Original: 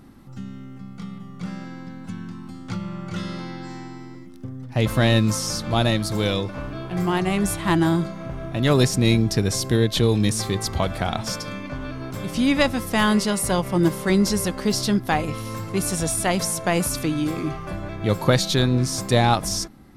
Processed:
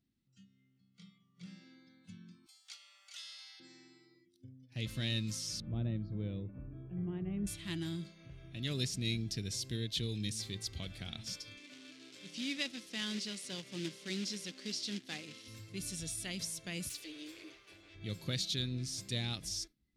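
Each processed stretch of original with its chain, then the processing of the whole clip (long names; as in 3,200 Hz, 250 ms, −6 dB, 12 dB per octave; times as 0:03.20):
0:02.46–0:03.60: Chebyshev high-pass filter 650 Hz, order 5 + parametric band 13,000 Hz +12.5 dB 2.1 octaves
0:05.60–0:07.47: low-pass filter 1,000 Hz + low-shelf EQ 400 Hz +5.5 dB
0:11.57–0:15.48: log-companded quantiser 4 bits + band-pass filter 200–7,200 Hz
0:16.89–0:17.95: lower of the sound and its delayed copy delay 9.4 ms + low-shelf EQ 200 Hz −10 dB
whole clip: meter weighting curve D; noise reduction from a noise print of the clip's start 15 dB; guitar amp tone stack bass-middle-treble 10-0-1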